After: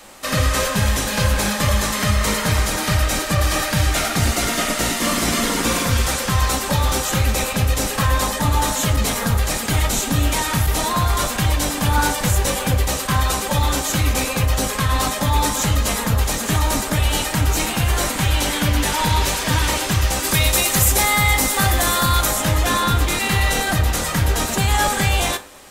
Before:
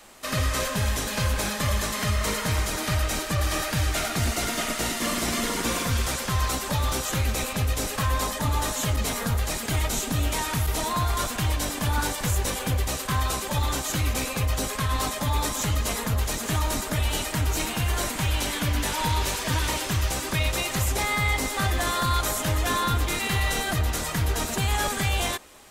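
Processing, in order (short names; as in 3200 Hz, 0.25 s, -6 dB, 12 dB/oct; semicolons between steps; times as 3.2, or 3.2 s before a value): 20.23–22.25 high shelf 6000 Hz -> 11000 Hz +11 dB; reverb RT60 0.45 s, pre-delay 3 ms, DRR 7.5 dB; gain +6.5 dB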